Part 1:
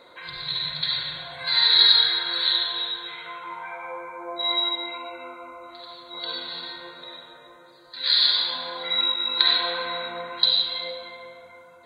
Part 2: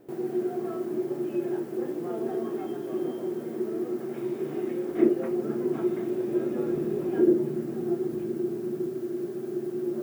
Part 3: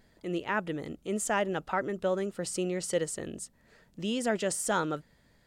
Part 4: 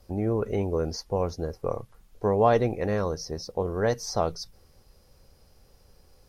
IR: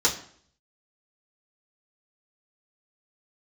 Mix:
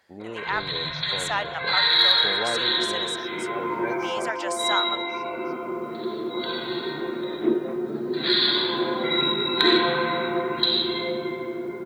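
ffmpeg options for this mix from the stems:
-filter_complex "[0:a]lowpass=f=3700:w=0.5412,lowpass=f=3700:w=1.3066,adelay=200,volume=0.891[s0];[1:a]acontrast=49,adelay=2450,volume=0.237[s1];[2:a]highpass=f=790:w=0.5412,highpass=f=790:w=1.3066,volume=0.891,asplit=2[s2][s3];[3:a]highpass=200,volume=0.168,asplit=2[s4][s5];[s5]volume=0.335[s6];[s3]apad=whole_len=550218[s7];[s1][s7]sidechaincompress=threshold=0.0126:ratio=8:attack=16:release=998[s8];[s6]aecho=0:1:1091:1[s9];[s0][s8][s2][s4][s9]amix=inputs=5:normalize=0,highshelf=f=4800:g=-9,acontrast=66"

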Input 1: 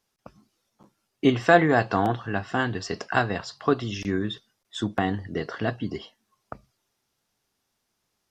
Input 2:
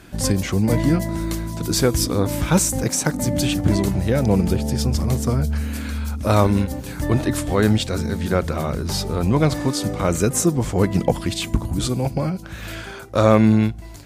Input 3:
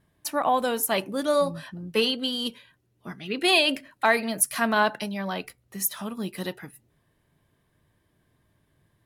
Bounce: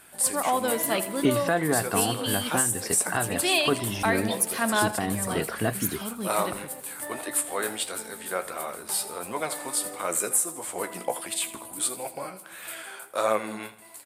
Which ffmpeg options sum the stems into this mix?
-filter_complex "[0:a]volume=1.12[s0];[1:a]highpass=630,highshelf=f=7400:t=q:w=3:g=7.5,flanger=delay=8.9:depth=7.9:regen=50:speed=1.5:shape=triangular,volume=0.944,asplit=2[s1][s2];[s2]volume=0.158[s3];[2:a]volume=0.794,asplit=2[s4][s5];[s5]volume=0.178[s6];[s3][s6]amix=inputs=2:normalize=0,aecho=0:1:82|164|246|328|410|492|574:1|0.47|0.221|0.104|0.0488|0.0229|0.0108[s7];[s0][s1][s4][s7]amix=inputs=4:normalize=0,alimiter=limit=0.266:level=0:latency=1:release=363"

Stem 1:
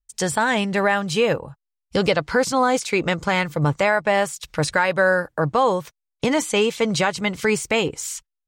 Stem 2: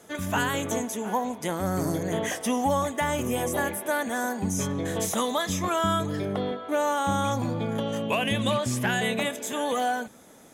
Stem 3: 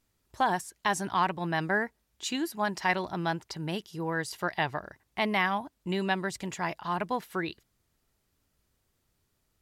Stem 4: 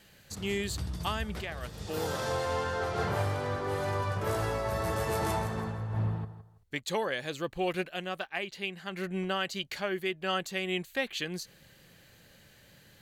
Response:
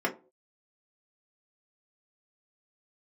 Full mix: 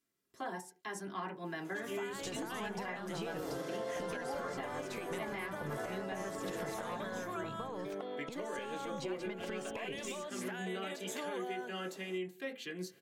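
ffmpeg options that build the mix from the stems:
-filter_complex "[0:a]aeval=exprs='if(lt(val(0),0),0.708*val(0),val(0))':c=same,acompressor=threshold=0.0501:ratio=6,adelay=2050,volume=1.06[s0];[1:a]highpass=f=270:w=0.5412,highpass=f=270:w=1.3066,adelay=1650,volume=0.841[s1];[2:a]volume=0.316,asplit=2[s2][s3];[s3]volume=0.316[s4];[3:a]adelay=1450,volume=0.316,asplit=2[s5][s6];[s6]volume=0.447[s7];[s2][s5]amix=inputs=2:normalize=0,highpass=f=830:w=0.5412,highpass=f=830:w=1.3066,alimiter=level_in=3.16:limit=0.0631:level=0:latency=1,volume=0.316,volume=1[s8];[s0][s1]amix=inputs=2:normalize=0,highshelf=f=4700:g=-7,acompressor=threshold=0.0141:ratio=4,volume=1[s9];[4:a]atrim=start_sample=2205[s10];[s4][s7]amix=inputs=2:normalize=0[s11];[s11][s10]afir=irnorm=-1:irlink=0[s12];[s8][s9][s12]amix=inputs=3:normalize=0,alimiter=level_in=2:limit=0.0631:level=0:latency=1:release=396,volume=0.501"

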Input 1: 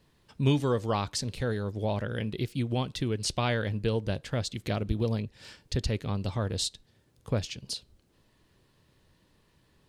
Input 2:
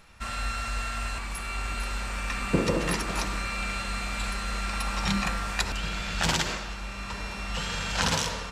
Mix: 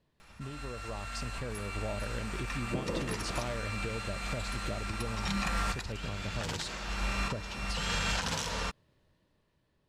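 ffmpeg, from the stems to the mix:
-filter_complex "[0:a]highshelf=f=4900:g=-8,acompressor=threshold=0.0251:ratio=6,equalizer=f=610:t=o:w=0.24:g=6,volume=0.355,asplit=2[s0][s1];[1:a]alimiter=limit=0.158:level=0:latency=1:release=463,adelay=200,volume=0.841[s2];[s1]apad=whole_len=384283[s3];[s2][s3]sidechaincompress=threshold=0.00251:ratio=8:attack=16:release=478[s4];[s0][s4]amix=inputs=2:normalize=0,dynaudnorm=f=320:g=7:m=2,alimiter=limit=0.0891:level=0:latency=1:release=268"

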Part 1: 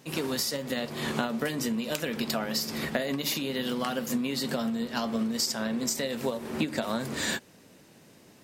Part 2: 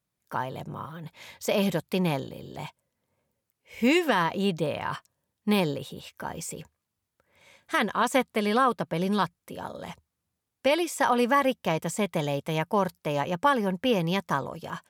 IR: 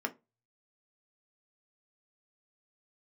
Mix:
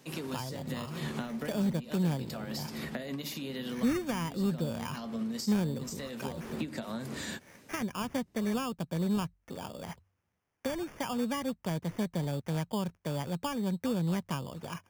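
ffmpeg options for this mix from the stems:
-filter_complex "[0:a]volume=0.708[s0];[1:a]acrossover=split=4600[s1][s2];[s2]acompressor=threshold=0.00447:ratio=4:attack=1:release=60[s3];[s1][s3]amix=inputs=2:normalize=0,acrusher=samples=11:mix=1:aa=0.000001,volume=1,asplit=2[s4][s5];[s5]apad=whole_len=371872[s6];[s0][s6]sidechaincompress=threshold=0.0501:ratio=8:attack=23:release=1070[s7];[s7][s4]amix=inputs=2:normalize=0,bandreject=f=47.29:t=h:w=4,bandreject=f=94.58:t=h:w=4,acrossover=split=240[s8][s9];[s9]acompressor=threshold=0.00891:ratio=2.5[s10];[s8][s10]amix=inputs=2:normalize=0"

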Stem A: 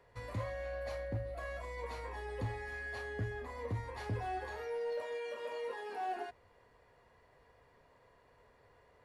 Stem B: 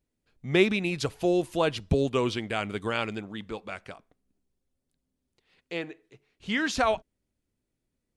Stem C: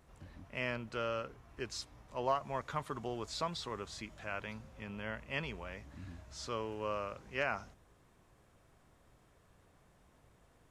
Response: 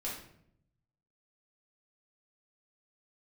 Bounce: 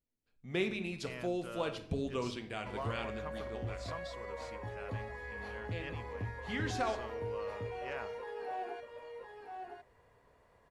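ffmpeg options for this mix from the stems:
-filter_complex "[0:a]highshelf=f=4100:g=-8,adelay=2500,volume=0.794,asplit=2[s0][s1];[s1]volume=0.562[s2];[1:a]volume=0.2,asplit=2[s3][s4];[s4]volume=0.531[s5];[2:a]adelay=500,volume=0.355[s6];[3:a]atrim=start_sample=2205[s7];[s5][s7]afir=irnorm=-1:irlink=0[s8];[s2]aecho=0:1:1010:1[s9];[s0][s3][s6][s8][s9]amix=inputs=5:normalize=0"

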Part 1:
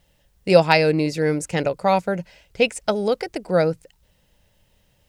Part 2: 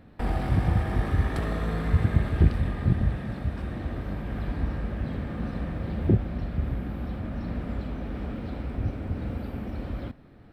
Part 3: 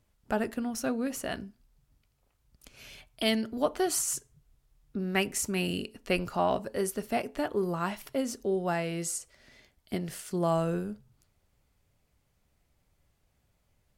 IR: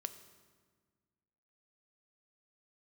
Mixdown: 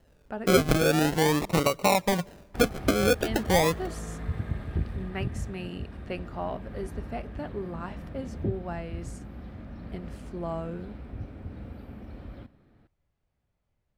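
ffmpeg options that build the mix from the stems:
-filter_complex "[0:a]acrusher=samples=37:mix=1:aa=0.000001:lfo=1:lforange=22.2:lforate=0.44,volume=1.06,asplit=2[s0][s1];[s1]volume=0.141[s2];[1:a]adelay=2350,volume=0.251,asplit=2[s3][s4];[s4]volume=0.531[s5];[2:a]aemphasis=mode=reproduction:type=75kf,volume=0.501[s6];[3:a]atrim=start_sample=2205[s7];[s2][s5]amix=inputs=2:normalize=0[s8];[s8][s7]afir=irnorm=-1:irlink=0[s9];[s0][s3][s6][s9]amix=inputs=4:normalize=0,acompressor=threshold=0.1:ratio=3"

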